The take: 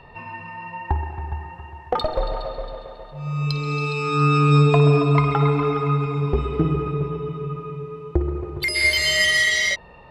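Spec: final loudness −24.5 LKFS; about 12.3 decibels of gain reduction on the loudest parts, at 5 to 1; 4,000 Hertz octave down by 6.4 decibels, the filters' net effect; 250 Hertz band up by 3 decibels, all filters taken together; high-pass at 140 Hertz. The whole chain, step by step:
high-pass filter 140 Hz
parametric band 250 Hz +7 dB
parametric band 4,000 Hz −9 dB
downward compressor 5 to 1, threshold −25 dBFS
level +4.5 dB

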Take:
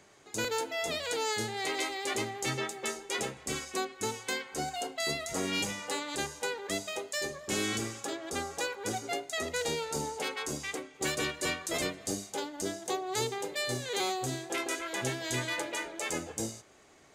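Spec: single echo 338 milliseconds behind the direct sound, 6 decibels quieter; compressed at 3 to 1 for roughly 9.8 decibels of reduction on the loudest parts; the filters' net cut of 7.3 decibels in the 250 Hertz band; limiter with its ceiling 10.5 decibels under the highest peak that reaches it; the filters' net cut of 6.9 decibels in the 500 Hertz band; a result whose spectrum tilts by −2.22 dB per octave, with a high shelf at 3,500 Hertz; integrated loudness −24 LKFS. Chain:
parametric band 250 Hz −7.5 dB
parametric band 500 Hz −6.5 dB
high-shelf EQ 3,500 Hz −3.5 dB
downward compressor 3 to 1, threshold −45 dBFS
brickwall limiter −37 dBFS
single-tap delay 338 ms −6 dB
level +22 dB

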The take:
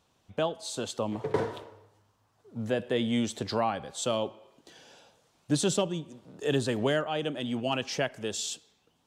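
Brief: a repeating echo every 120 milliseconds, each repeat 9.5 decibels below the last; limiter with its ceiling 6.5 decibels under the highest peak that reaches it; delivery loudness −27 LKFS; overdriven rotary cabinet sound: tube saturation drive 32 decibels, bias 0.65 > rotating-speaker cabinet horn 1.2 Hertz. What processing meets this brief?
brickwall limiter −22 dBFS
repeating echo 120 ms, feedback 33%, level −9.5 dB
tube saturation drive 32 dB, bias 0.65
rotating-speaker cabinet horn 1.2 Hz
level +13.5 dB

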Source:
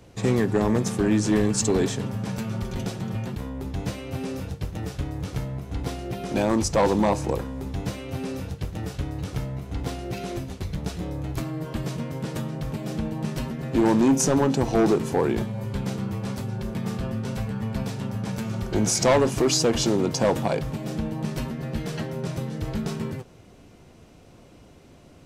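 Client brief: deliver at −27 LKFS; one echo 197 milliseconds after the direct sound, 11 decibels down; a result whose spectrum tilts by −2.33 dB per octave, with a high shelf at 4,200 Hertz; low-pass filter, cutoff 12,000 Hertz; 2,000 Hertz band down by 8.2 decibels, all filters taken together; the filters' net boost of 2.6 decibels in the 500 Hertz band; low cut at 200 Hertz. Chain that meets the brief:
high-pass filter 200 Hz
low-pass filter 12,000 Hz
parametric band 500 Hz +4 dB
parametric band 2,000 Hz −9 dB
high-shelf EQ 4,200 Hz −9 dB
single-tap delay 197 ms −11 dB
level −1 dB

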